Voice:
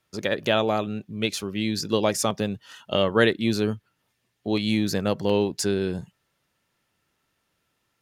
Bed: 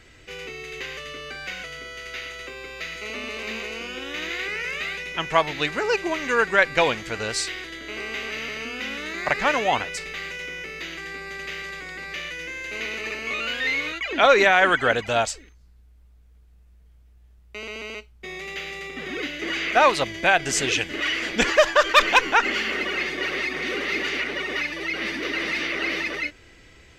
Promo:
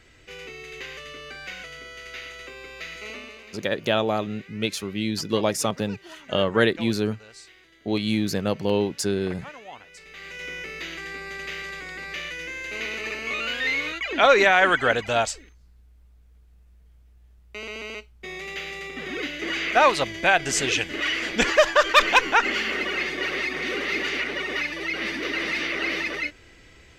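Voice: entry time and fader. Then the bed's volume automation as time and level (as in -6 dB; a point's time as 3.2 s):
3.40 s, -0.5 dB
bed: 3.1 s -3.5 dB
3.65 s -20 dB
9.8 s -20 dB
10.48 s -0.5 dB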